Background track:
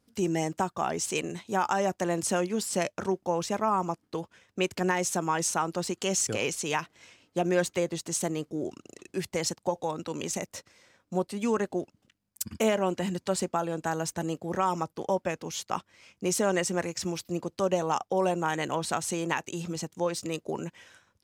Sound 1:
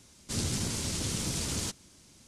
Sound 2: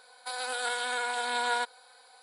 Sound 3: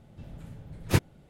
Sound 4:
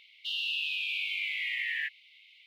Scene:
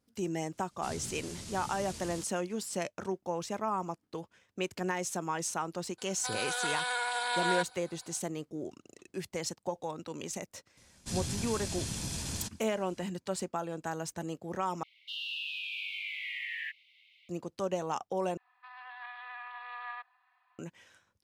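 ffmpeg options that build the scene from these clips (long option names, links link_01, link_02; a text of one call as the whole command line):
ffmpeg -i bed.wav -i cue0.wav -i cue1.wav -i cue2.wav -i cue3.wav -filter_complex "[1:a]asplit=2[link_01][link_02];[2:a]asplit=2[link_03][link_04];[0:a]volume=-6.5dB[link_05];[link_03]highpass=520[link_06];[link_02]aecho=1:1:1.2:0.32[link_07];[link_04]highpass=frequency=280:width_type=q:width=0.5412,highpass=frequency=280:width_type=q:width=1.307,lowpass=frequency=2800:width_type=q:width=0.5176,lowpass=frequency=2800:width_type=q:width=0.7071,lowpass=frequency=2800:width_type=q:width=1.932,afreqshift=250[link_08];[link_05]asplit=3[link_09][link_10][link_11];[link_09]atrim=end=14.834[link_12];[4:a]atrim=end=2.46,asetpts=PTS-STARTPTS,volume=-5.5dB[link_13];[link_10]atrim=start=17.286:end=18.374[link_14];[link_08]atrim=end=2.22,asetpts=PTS-STARTPTS,volume=-12.5dB[link_15];[link_11]atrim=start=20.586[link_16];[link_01]atrim=end=2.27,asetpts=PTS-STARTPTS,volume=-11.5dB,afade=type=in:duration=0.004:curve=hsin,afade=type=out:start_time=2.266:duration=0.004:curve=hsin,adelay=530[link_17];[link_06]atrim=end=2.22,asetpts=PTS-STARTPTS,volume=-1dB,afade=type=in:duration=0.004:curve=hsin,afade=type=out:start_time=2.216:duration=0.004:curve=hsin,adelay=5980[link_18];[link_07]atrim=end=2.27,asetpts=PTS-STARTPTS,volume=-5dB,afade=type=in:duration=0.004:curve=hsin,afade=type=out:start_time=2.266:duration=0.004:curve=hsin,adelay=10770[link_19];[link_12][link_13]acrossfade=duration=0.004:curve1=hsin:curve2=hsin[link_20];[link_20][link_14]acrossfade=duration=0.004:curve1=hsin:curve2=hsin[link_21];[link_21][link_15]acrossfade=duration=0.004:curve1=hsin:curve2=hsin[link_22];[link_22][link_16]acrossfade=duration=0.004:curve1=hsin:curve2=hsin[link_23];[link_23][link_17][link_18][link_19]amix=inputs=4:normalize=0" out.wav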